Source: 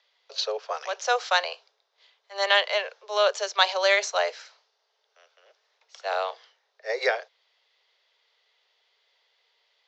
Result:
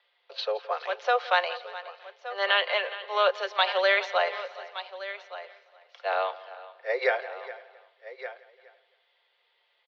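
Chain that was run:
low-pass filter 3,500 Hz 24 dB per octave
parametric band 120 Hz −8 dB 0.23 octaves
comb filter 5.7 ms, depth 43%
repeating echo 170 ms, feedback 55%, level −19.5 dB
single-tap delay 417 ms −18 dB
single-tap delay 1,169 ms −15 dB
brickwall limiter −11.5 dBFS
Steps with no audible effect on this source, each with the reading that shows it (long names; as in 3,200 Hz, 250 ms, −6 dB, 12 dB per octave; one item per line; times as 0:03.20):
parametric band 120 Hz: nothing at its input below 360 Hz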